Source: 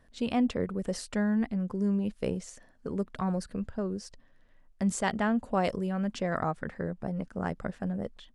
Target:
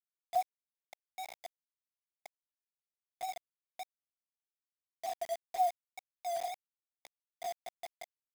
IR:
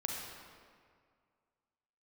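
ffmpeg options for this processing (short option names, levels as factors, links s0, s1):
-af "afwtdn=0.0251,asuperpass=centerf=710:order=12:qfactor=7.8,acrusher=bits=7:mix=0:aa=0.000001,volume=1.68"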